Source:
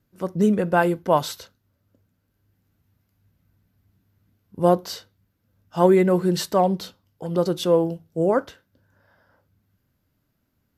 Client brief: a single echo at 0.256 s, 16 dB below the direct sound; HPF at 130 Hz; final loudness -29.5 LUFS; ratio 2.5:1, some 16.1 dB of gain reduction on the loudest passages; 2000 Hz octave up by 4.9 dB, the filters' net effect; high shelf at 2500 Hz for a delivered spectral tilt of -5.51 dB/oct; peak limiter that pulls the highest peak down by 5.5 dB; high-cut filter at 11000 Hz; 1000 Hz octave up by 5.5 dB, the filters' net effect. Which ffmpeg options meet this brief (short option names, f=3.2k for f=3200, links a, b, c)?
-af "highpass=130,lowpass=11k,equalizer=f=1k:t=o:g=7,equalizer=f=2k:t=o:g=7,highshelf=f=2.5k:g=-8,acompressor=threshold=-34dB:ratio=2.5,alimiter=limit=-22dB:level=0:latency=1,aecho=1:1:256:0.158,volume=5.5dB"